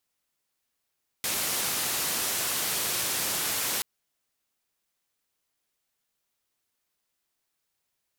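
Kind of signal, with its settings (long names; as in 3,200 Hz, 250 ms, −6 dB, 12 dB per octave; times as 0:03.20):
band-limited noise 86–15,000 Hz, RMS −29 dBFS 2.58 s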